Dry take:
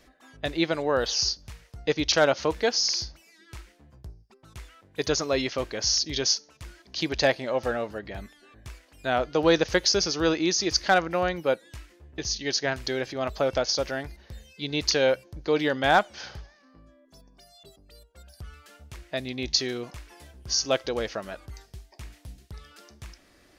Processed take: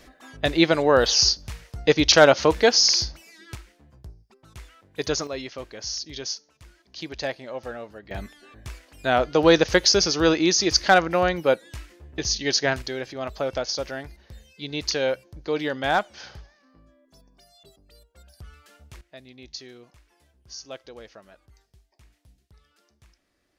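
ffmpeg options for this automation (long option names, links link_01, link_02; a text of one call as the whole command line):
ffmpeg -i in.wav -af "asetnsamples=nb_out_samples=441:pad=0,asendcmd='3.55 volume volume 0dB;5.27 volume volume -7dB;8.11 volume volume 4.5dB;12.82 volume volume -2dB;19.01 volume volume -14dB',volume=7dB" out.wav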